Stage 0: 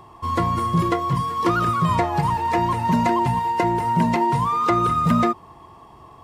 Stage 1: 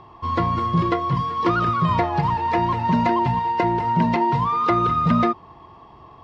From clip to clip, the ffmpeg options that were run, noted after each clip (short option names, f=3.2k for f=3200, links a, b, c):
-af "lowpass=f=4.9k:w=0.5412,lowpass=f=4.9k:w=1.3066"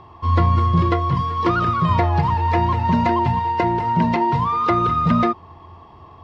-af "equalizer=f=86:w=7.3:g=14.5,volume=1dB"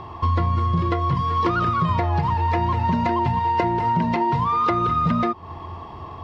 -af "acompressor=threshold=-26dB:ratio=6,volume=7.5dB"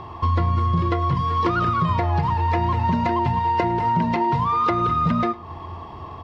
-af "aecho=1:1:104:0.1"